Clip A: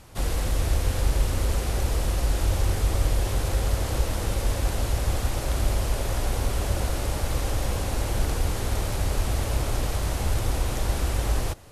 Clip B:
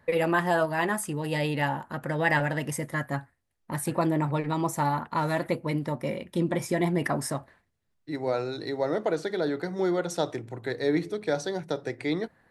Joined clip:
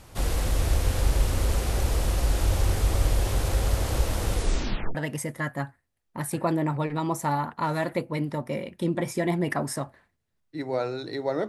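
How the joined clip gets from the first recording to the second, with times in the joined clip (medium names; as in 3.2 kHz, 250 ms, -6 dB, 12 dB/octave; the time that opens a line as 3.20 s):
clip A
4.32 s: tape stop 0.63 s
4.95 s: go over to clip B from 2.49 s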